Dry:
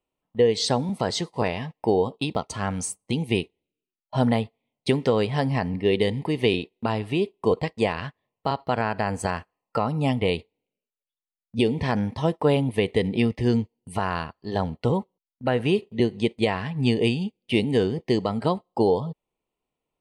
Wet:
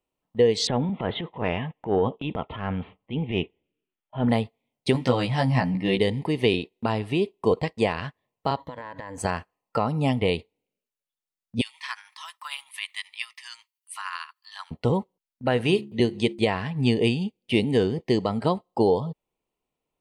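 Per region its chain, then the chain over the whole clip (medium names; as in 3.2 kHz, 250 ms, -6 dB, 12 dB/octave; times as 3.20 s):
0.67–4.29 s: steep low-pass 3.5 kHz 96 dB/octave + transient shaper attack -10 dB, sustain +5 dB
4.93–5.99 s: peaking EQ 420 Hz -14.5 dB 0.25 oct + doubling 16 ms -2.5 dB
8.57–9.18 s: rippled EQ curve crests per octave 1.1, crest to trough 15 dB + compression 10:1, threshold -33 dBFS
11.61–14.71 s: elliptic high-pass 1.1 kHz, stop band 60 dB + treble shelf 7.4 kHz +11 dB + tremolo 13 Hz, depth 43%
15.50–16.42 s: treble shelf 2.6 kHz +5.5 dB + de-hum 69.43 Hz, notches 5
whole clip: none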